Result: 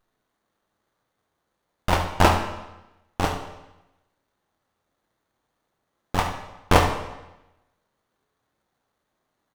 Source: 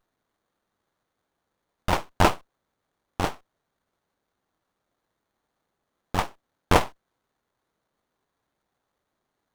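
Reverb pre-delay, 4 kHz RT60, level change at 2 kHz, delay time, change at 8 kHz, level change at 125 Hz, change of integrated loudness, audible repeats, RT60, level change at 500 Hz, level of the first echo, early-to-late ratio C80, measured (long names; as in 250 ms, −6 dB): 23 ms, 0.90 s, +3.0 dB, 70 ms, +2.5 dB, +4.5 dB, +2.0 dB, 1, 1.0 s, +2.5 dB, −11.5 dB, 9.5 dB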